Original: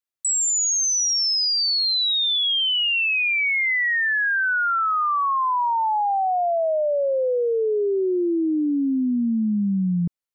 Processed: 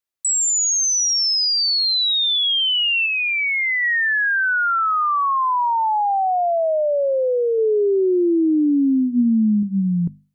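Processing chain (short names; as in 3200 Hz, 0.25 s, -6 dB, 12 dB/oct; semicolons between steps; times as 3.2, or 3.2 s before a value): 3.06–3.83 Bessel low-pass 2900 Hz, order 2; 7.58–9.63 low shelf 330 Hz +4.5 dB; notches 50/100/150/200/250 Hz; gain +2.5 dB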